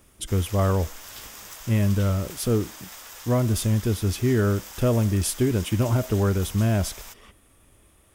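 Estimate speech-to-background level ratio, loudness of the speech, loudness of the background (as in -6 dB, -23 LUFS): 15.5 dB, -24.0 LUFS, -39.5 LUFS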